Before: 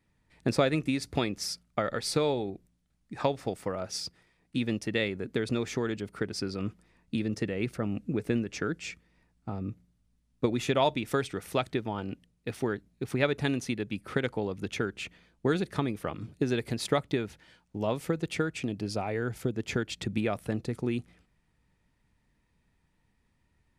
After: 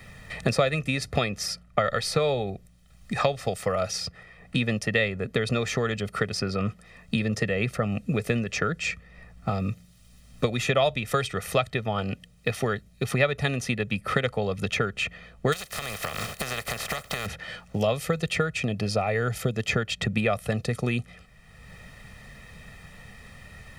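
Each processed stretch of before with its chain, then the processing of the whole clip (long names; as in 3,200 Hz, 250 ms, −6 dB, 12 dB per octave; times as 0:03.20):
0:15.52–0:17.25: compressing power law on the bin magnitudes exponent 0.32 + downward compressor 10 to 1, threshold −39 dBFS
whole clip: parametric band 2,100 Hz +3 dB 1.9 octaves; comb filter 1.6 ms, depth 74%; multiband upward and downward compressor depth 70%; level +3.5 dB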